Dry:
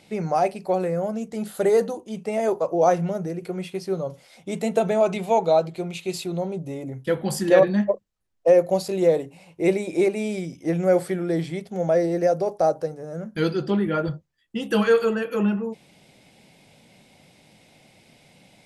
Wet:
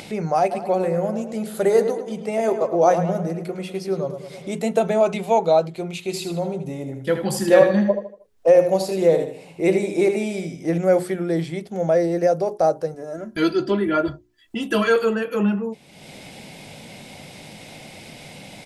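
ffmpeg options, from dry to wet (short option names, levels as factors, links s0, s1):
-filter_complex "[0:a]asplit=3[s0][s1][s2];[s0]afade=t=out:st=0.5:d=0.02[s3];[s1]asplit=2[s4][s5];[s5]adelay=106,lowpass=f=3500:p=1,volume=0.355,asplit=2[s6][s7];[s7]adelay=106,lowpass=f=3500:p=1,volume=0.51,asplit=2[s8][s9];[s9]adelay=106,lowpass=f=3500:p=1,volume=0.51,asplit=2[s10][s11];[s11]adelay=106,lowpass=f=3500:p=1,volume=0.51,asplit=2[s12][s13];[s13]adelay=106,lowpass=f=3500:p=1,volume=0.51,asplit=2[s14][s15];[s15]adelay=106,lowpass=f=3500:p=1,volume=0.51[s16];[s4][s6][s8][s10][s12][s14][s16]amix=inputs=7:normalize=0,afade=t=in:st=0.5:d=0.02,afade=t=out:st=4.49:d=0.02[s17];[s2]afade=t=in:st=4.49:d=0.02[s18];[s3][s17][s18]amix=inputs=3:normalize=0,asettb=1/sr,asplit=3[s19][s20][s21];[s19]atrim=end=6.004[s22];[s20]atrim=start=6:end=10.78,asetpts=PTS-STARTPTS,afade=t=in:d=0.004:c=qsin,afade=t=out:st=4.776:d=0.004:c=qsin,aecho=1:1:78|156|234|312:0.398|0.143|0.0516|0.0186,atrim=end_sample=210798[s23];[s21]atrim=start=10.776[s24];[s22][s23]acrossfade=d=0.004:c1=hsin:c2=qsin[s25];[s25][s24]acrossfade=d=0.004:c1=qsin:c2=hsin,asettb=1/sr,asplit=3[s26][s27][s28];[s26]atrim=end=12.944[s29];[s27]atrim=start=12.94:end=14.96,asetpts=PTS-STARTPTS,afade=t=in:d=0.004:c=qsin,afade=t=out:st=2.016:d=0.004:c=qsin,aecho=1:1:3:0.7,atrim=end_sample=89082[s30];[s28]atrim=start=14.956[s31];[s29][s30]acrossfade=d=0.004:c1=hsin:c2=qsin[s32];[s32][s31]acrossfade=d=0.004:c1=qsin:c2=hsin,bandreject=f=60:t=h:w=6,bandreject=f=120:t=h:w=6,bandreject=f=180:t=h:w=6,bandreject=f=240:t=h:w=6,bandreject=f=300:t=h:w=6,bandreject=f=360:t=h:w=6,bandreject=f=420:t=h:w=6,acompressor=mode=upward:threshold=0.0316:ratio=2.5,volume=1.26"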